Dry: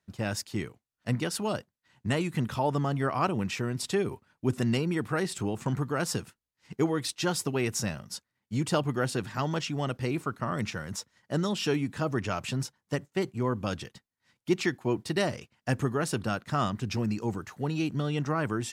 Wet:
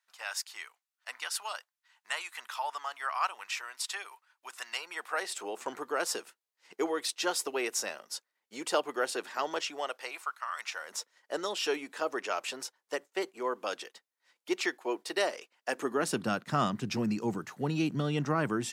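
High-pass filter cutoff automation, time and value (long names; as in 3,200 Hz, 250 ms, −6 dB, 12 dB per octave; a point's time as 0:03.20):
high-pass filter 24 dB per octave
0:04.67 900 Hz
0:05.62 390 Hz
0:09.65 390 Hz
0:10.52 1,100 Hz
0:10.98 400 Hz
0:15.69 400 Hz
0:16.27 140 Hz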